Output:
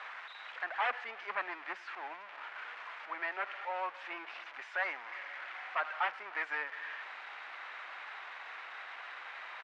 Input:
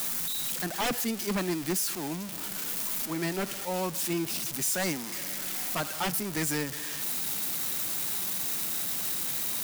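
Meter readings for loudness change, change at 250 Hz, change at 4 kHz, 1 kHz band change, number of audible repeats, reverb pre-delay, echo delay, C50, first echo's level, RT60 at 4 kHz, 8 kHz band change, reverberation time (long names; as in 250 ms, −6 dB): −10.5 dB, −27.0 dB, −14.5 dB, −0.5 dB, 1, no reverb audible, 300 ms, no reverb audible, −23.0 dB, no reverb audible, below −40 dB, no reverb audible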